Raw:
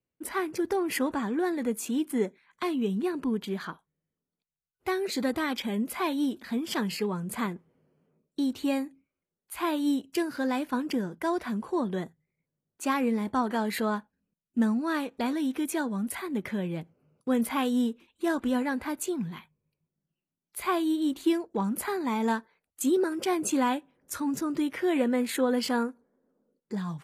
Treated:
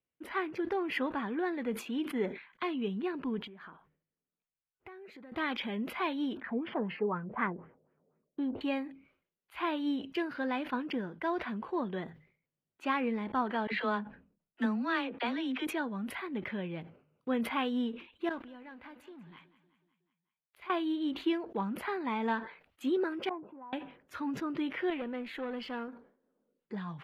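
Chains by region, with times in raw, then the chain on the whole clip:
3.47–5.32 s: peaking EQ 4 kHz -10.5 dB 1.2 oct + compression 10:1, threshold -42 dBFS
6.37–8.61 s: distance through air 87 m + LFO low-pass sine 4 Hz 550–1900 Hz
13.67–15.67 s: level-controlled noise filter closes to 670 Hz, open at -23 dBFS + treble shelf 2.4 kHz +8.5 dB + phase dispersion lows, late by 53 ms, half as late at 450 Hz
18.29–20.70 s: companding laws mixed up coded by A + compression 4:1, threshold -44 dBFS + feedback delay 185 ms, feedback 57%, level -16 dB
23.29–23.73 s: four-pole ladder low-pass 1.1 kHz, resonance 55% + compression 5:1, threshold -43 dBFS
24.90–25.88 s: valve stage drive 22 dB, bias 0.35 + feedback comb 64 Hz, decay 1.5 s, harmonics odd, mix 40%
whole clip: FFT filter 160 Hz 0 dB, 3 kHz +7 dB, 8.2 kHz -22 dB, 12 kHz -17 dB; decay stretcher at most 120 dB/s; trim -7.5 dB

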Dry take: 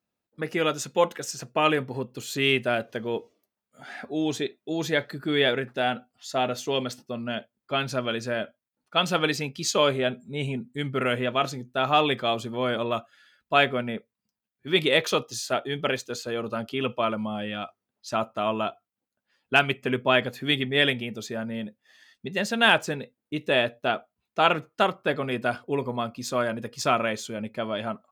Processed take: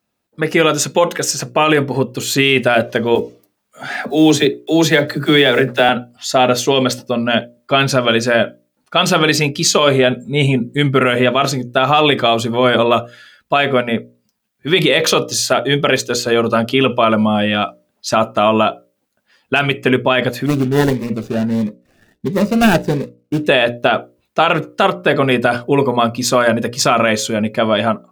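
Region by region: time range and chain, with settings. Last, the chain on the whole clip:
3.15–5.89 s: block-companded coder 7-bit + phase dispersion lows, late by 40 ms, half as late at 310 Hz
20.46–23.45 s: median filter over 41 samples + band-stop 3.2 kHz, Q 26 + Shepard-style phaser rising 1.5 Hz
whole clip: level rider gain up to 5 dB; hum notches 60/120/180/240/300/360/420/480/540/600 Hz; loudness maximiser +12.5 dB; trim -1 dB

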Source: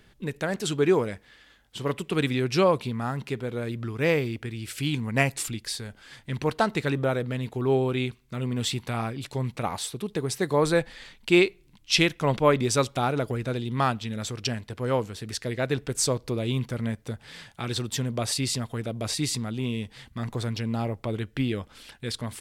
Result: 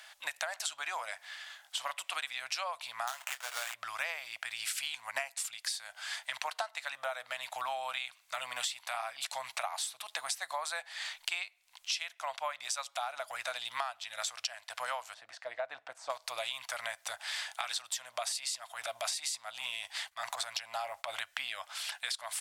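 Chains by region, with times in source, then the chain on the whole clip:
3.07–3.74 s: tilt shelf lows -6.5 dB, about 640 Hz + doubling 23 ms -11.5 dB + sample-rate reducer 5.1 kHz, jitter 20%
15.14–16.10 s: de-esser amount 70% + band-pass filter 300 Hz, Q 0.8
18.26–21.22 s: transient shaper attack -9 dB, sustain +3 dB + expander -45 dBFS
whole clip: elliptic high-pass 660 Hz, stop band 40 dB; peaking EQ 7.5 kHz +5 dB 1.7 oct; compression 16:1, threshold -41 dBFS; trim +8 dB

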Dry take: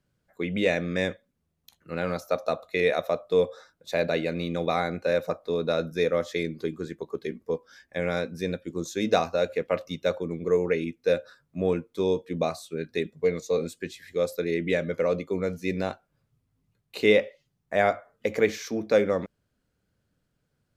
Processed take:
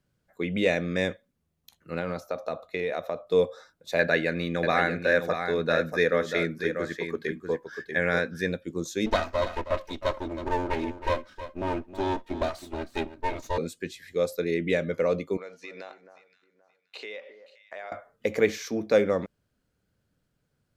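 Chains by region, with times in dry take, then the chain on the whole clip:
1.99–3.27 s: treble shelf 4.3 kHz -8 dB + compression 5:1, threshold -25 dBFS
3.99–8.49 s: peaking EQ 1.7 kHz +13.5 dB 0.45 oct + delay 640 ms -7.5 dB
9.06–13.58 s: comb filter that takes the minimum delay 3.2 ms + treble shelf 6.7 kHz -7 dB + delay 317 ms -12.5 dB
15.37–17.92 s: band-pass 620–5300 Hz + compression 5:1, threshold -37 dBFS + echo whose repeats swap between lows and highs 263 ms, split 1.6 kHz, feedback 51%, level -11 dB
whole clip: none

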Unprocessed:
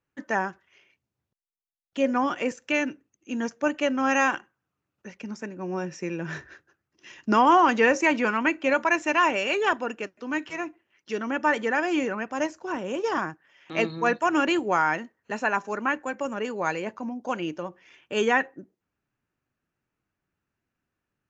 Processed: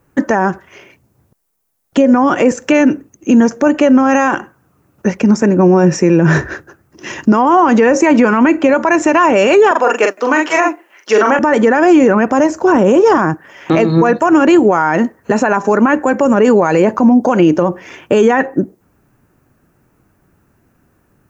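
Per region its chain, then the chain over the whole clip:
9.71–11.39 s: high-pass 580 Hz + doubling 42 ms -4 dB
whole clip: peaking EQ 3.3 kHz -13 dB 2.2 oct; compression, threshold -30 dBFS; loudness maximiser +30 dB; trim -1 dB

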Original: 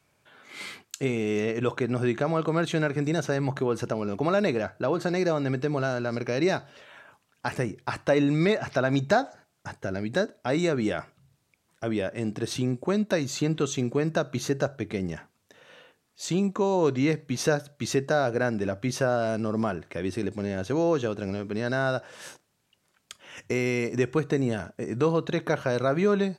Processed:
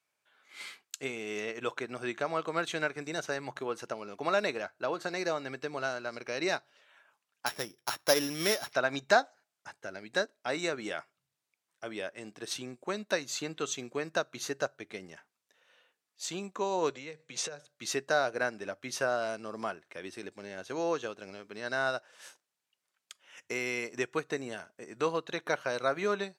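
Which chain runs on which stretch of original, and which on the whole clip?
7.46–8.73 s: sorted samples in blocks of 8 samples + band-stop 4.5 kHz, Q 17
16.90–17.67 s: cabinet simulation 130–9300 Hz, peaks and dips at 150 Hz +9 dB, 250 Hz -5 dB, 500 Hz +8 dB, 2.4 kHz +4 dB, 3.5 kHz +4 dB, 7.4 kHz +8 dB + compression 10:1, threshold -27 dBFS
whole clip: high-pass 1 kHz 6 dB/octave; upward expansion 1.5:1, over -52 dBFS; trim +3.5 dB

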